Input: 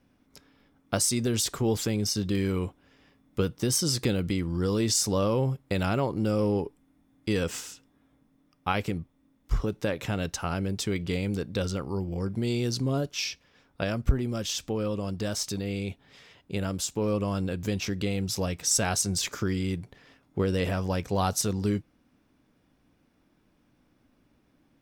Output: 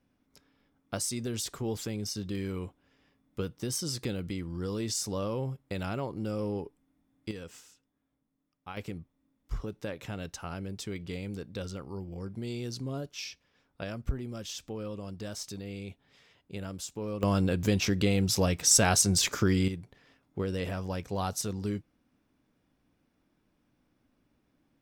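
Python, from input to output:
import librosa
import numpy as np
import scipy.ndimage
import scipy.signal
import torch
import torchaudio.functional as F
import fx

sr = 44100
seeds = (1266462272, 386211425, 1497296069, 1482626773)

y = fx.gain(x, sr, db=fx.steps((0.0, -7.5), (7.31, -15.5), (8.77, -8.5), (17.23, 3.0), (19.68, -6.0)))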